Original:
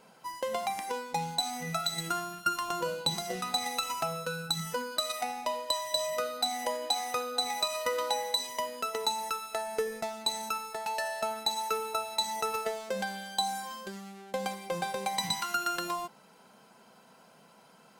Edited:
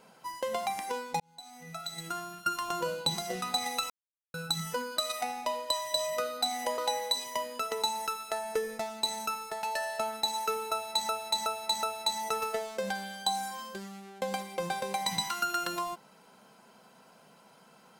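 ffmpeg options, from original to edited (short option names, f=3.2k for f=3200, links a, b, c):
-filter_complex "[0:a]asplit=8[a][b][c][d][e][f][g][h];[a]atrim=end=1.2,asetpts=PTS-STARTPTS,afade=t=out:st=1.196:d=0.004:c=hsin[i];[b]atrim=start=1.2:end=3.9,asetpts=PTS-STARTPTS,afade=t=in:d=1.55,afade=t=out:st=2.696:d=0.004:c=hsin[j];[c]atrim=start=3.9:end=4.34,asetpts=PTS-STARTPTS,volume=0[k];[d]atrim=start=4.34:end=6.782,asetpts=PTS-STARTPTS,afade=t=in:d=0.004:c=hsin[l];[e]atrim=start=8.008:end=12.322[m];[f]atrim=start=11.948:end=12.322[n];[g]atrim=start=11.948:end=12.322[o];[h]atrim=start=11.948[p];[i][j][k][l]concat=n=4:v=0:a=1[q];[q][m]acrossfade=d=0.004:c1=hsin:c2=hsin[r];[r][n]acrossfade=d=0.004:c1=hsin:c2=hsin[s];[s][o]acrossfade=d=0.004:c1=hsin:c2=hsin[t];[t][p]acrossfade=d=0.004:c1=hsin:c2=hsin"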